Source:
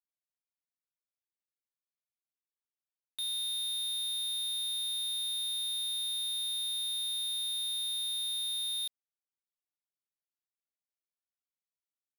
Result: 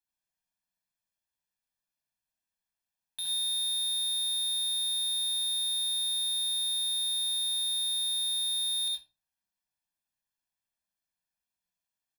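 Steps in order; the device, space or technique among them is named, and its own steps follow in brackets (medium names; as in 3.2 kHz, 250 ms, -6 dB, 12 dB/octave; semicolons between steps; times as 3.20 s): microphone above a desk (comb 1.2 ms, depth 74%; reverberation RT60 0.35 s, pre-delay 65 ms, DRR -1 dB)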